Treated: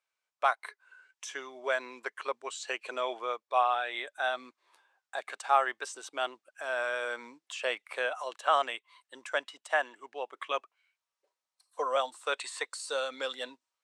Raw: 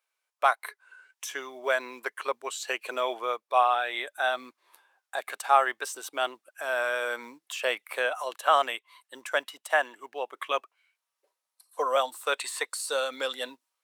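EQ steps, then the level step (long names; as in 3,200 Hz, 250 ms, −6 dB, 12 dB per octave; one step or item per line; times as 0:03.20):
low-pass filter 8,400 Hz 24 dB per octave
−4.0 dB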